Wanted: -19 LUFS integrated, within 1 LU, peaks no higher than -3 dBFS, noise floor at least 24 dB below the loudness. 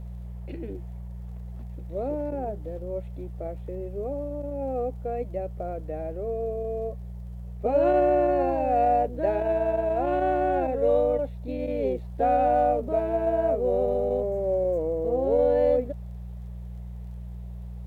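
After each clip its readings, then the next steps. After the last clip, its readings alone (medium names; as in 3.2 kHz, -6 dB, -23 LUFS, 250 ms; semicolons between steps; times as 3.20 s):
tick rate 21 per s; hum 60 Hz; highest harmonic 180 Hz; hum level -35 dBFS; loudness -26.0 LUFS; peak level -12.0 dBFS; loudness target -19.0 LUFS
-> de-click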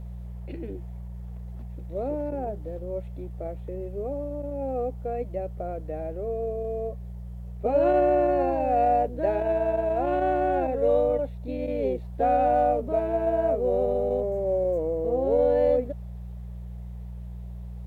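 tick rate 0.17 per s; hum 60 Hz; highest harmonic 180 Hz; hum level -35 dBFS
-> de-hum 60 Hz, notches 3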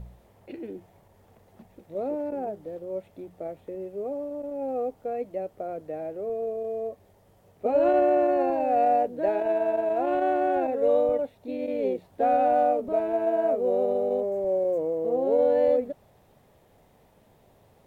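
hum not found; loudness -26.0 LUFS; peak level -12.5 dBFS; loudness target -19.0 LUFS
-> trim +7 dB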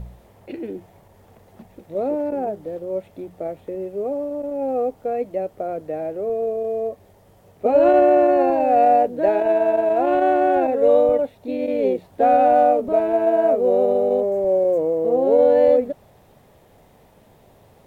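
loudness -19.0 LUFS; peak level -5.5 dBFS; noise floor -53 dBFS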